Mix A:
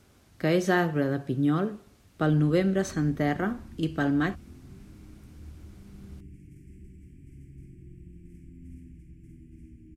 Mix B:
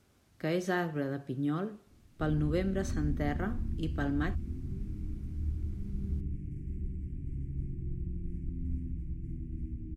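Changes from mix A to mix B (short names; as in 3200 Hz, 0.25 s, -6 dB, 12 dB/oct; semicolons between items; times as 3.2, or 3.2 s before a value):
speech -7.5 dB; background: add tilt -3 dB/oct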